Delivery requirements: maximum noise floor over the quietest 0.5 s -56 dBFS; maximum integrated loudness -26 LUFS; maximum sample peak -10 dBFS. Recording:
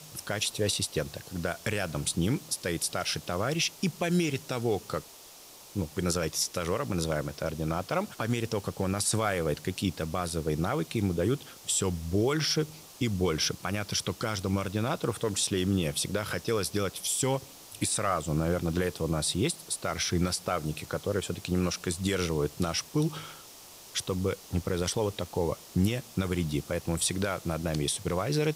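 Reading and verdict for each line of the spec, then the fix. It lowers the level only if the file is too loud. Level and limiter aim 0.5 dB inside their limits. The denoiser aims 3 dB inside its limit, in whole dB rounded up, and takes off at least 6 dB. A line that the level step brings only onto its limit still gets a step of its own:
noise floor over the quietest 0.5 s -50 dBFS: fail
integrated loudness -30.0 LUFS: pass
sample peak -16.0 dBFS: pass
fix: noise reduction 9 dB, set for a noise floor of -50 dBFS

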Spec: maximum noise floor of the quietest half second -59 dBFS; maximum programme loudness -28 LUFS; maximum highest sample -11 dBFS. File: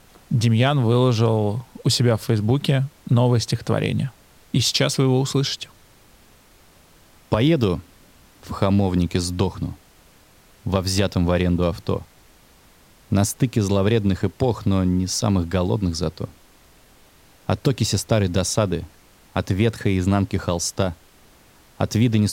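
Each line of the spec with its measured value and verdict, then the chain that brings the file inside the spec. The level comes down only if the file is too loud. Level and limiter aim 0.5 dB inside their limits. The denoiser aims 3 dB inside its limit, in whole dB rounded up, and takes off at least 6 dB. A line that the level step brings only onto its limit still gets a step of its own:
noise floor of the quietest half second -52 dBFS: fail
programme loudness -21.5 LUFS: fail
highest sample -3.5 dBFS: fail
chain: noise reduction 6 dB, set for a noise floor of -52 dBFS; trim -7 dB; peak limiter -11.5 dBFS

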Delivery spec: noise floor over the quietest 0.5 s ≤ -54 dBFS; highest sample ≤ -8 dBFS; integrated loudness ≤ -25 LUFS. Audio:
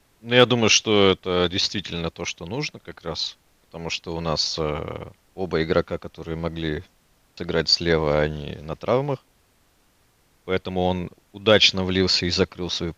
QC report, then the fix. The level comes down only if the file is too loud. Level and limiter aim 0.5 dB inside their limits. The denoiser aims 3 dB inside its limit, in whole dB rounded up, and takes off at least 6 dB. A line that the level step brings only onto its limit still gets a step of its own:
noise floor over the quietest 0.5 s -62 dBFS: pass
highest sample -2.5 dBFS: fail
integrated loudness -22.0 LUFS: fail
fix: trim -3.5 dB; peak limiter -8.5 dBFS

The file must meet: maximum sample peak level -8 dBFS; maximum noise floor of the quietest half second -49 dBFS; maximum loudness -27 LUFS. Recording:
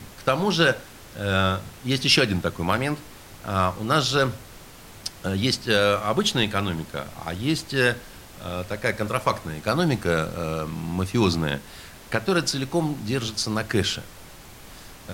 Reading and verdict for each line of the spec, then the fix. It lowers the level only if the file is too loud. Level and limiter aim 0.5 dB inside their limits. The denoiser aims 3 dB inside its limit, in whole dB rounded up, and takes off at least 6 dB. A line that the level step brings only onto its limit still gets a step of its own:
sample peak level -6.0 dBFS: fail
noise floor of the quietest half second -44 dBFS: fail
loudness -24.0 LUFS: fail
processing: noise reduction 6 dB, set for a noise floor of -44 dBFS; trim -3.5 dB

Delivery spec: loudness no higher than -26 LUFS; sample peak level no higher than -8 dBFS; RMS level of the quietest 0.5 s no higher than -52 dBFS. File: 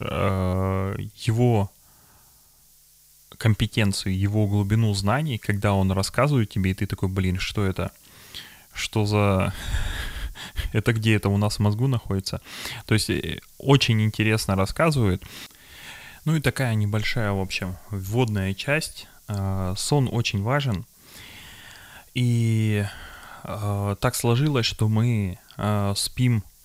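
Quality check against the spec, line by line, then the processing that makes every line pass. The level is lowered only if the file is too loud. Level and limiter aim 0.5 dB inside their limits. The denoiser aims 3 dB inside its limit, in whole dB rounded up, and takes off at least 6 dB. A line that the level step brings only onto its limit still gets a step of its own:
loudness -24.0 LUFS: fail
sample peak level -4.5 dBFS: fail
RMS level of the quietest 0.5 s -55 dBFS: pass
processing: trim -2.5 dB; peak limiter -8.5 dBFS

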